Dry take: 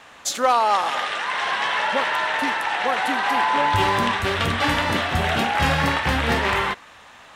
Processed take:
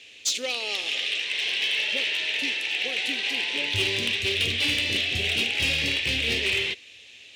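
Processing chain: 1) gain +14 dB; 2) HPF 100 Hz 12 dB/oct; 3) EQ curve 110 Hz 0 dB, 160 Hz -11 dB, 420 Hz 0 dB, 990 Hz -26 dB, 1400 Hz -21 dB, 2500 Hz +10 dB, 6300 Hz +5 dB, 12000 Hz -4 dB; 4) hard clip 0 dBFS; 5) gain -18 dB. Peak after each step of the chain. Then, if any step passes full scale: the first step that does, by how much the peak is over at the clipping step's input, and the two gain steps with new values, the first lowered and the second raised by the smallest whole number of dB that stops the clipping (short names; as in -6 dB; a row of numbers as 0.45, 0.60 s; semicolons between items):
+6.0, +6.5, +9.5, 0.0, -18.0 dBFS; step 1, 9.5 dB; step 1 +4 dB, step 5 -8 dB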